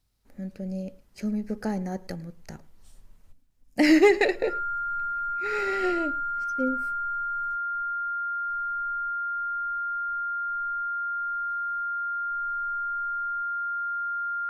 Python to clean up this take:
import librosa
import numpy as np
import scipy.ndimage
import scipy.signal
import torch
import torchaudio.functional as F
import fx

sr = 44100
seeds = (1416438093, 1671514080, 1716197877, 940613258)

y = fx.fix_declip(x, sr, threshold_db=-9.5)
y = fx.notch(y, sr, hz=1400.0, q=30.0)
y = fx.fix_echo_inverse(y, sr, delay_ms=108, level_db=-23.0)